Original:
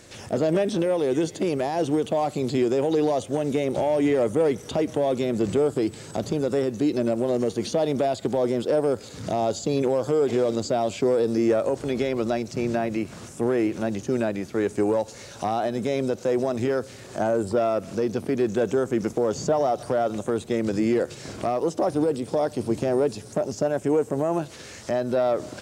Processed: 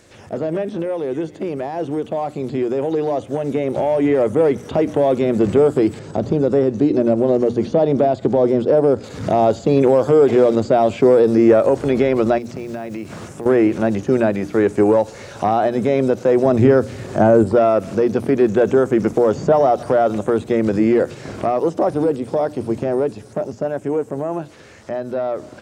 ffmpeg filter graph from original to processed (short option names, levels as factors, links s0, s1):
-filter_complex "[0:a]asettb=1/sr,asplit=3[s0][s1][s2];[s0]atrim=end=5.994[s3];[s1]atrim=start=5.99:end=9.04,asetpts=PTS-STARTPTS,afade=t=in:d=0.004:c=qsin,afade=t=out:st=3.046:d=0.004:c=qsin,lowpass=4700,equalizer=f=3200:w=0.38:g=-8.5[s4];[s2]atrim=start=9.036[s5];[s3][s4]acrossfade=d=0.004:c1=hsin:c2=qsin[s6];[s6][s5]acrossfade=d=0.004:c1=qsin:c2=hsin,asettb=1/sr,asplit=3[s7][s8][s9];[s7]atrim=end=12.384[s10];[s8]atrim=start=12.38:end=13.46,asetpts=PTS-STARTPTS,afade=t=in:d=0.004:c=qsin,afade=t=out:st=1.076:d=0.004:c=qsin,highpass=59,acompressor=threshold=0.0178:ratio=4:attack=3.2:release=140:knee=1:detection=peak,acrusher=bits=7:mode=log:mix=0:aa=0.000001[s11];[s9]atrim=start=13.456[s12];[s10][s11]acrossfade=d=0.004:c1=hsin:c2=qsin[s13];[s13][s12]acrossfade=d=0.004:c1=qsin:c2=hsin,asettb=1/sr,asplit=3[s14][s15][s16];[s14]atrim=end=16.454[s17];[s15]atrim=start=16.45:end=17.44,asetpts=PTS-STARTPTS,afade=t=in:d=0.004:c=qsin,afade=t=out:st=0.986:d=0.004:c=qsin,highpass=43,lowshelf=f=300:g=9[s18];[s16]atrim=start=17.436[s19];[s17][s18]acrossfade=d=0.004:c1=hsin:c2=qsin[s20];[s20][s19]acrossfade=d=0.004:c1=qsin:c2=hsin,acrossover=split=2600[s21][s22];[s22]acompressor=threshold=0.00224:ratio=4:attack=1:release=60[s23];[s21][s23]amix=inputs=2:normalize=0,bandreject=f=60:t=h:w=6,bandreject=f=120:t=h:w=6,bandreject=f=180:t=h:w=6,bandreject=f=240:t=h:w=6,bandreject=f=300:t=h:w=6,dynaudnorm=f=660:g=13:m=3.76"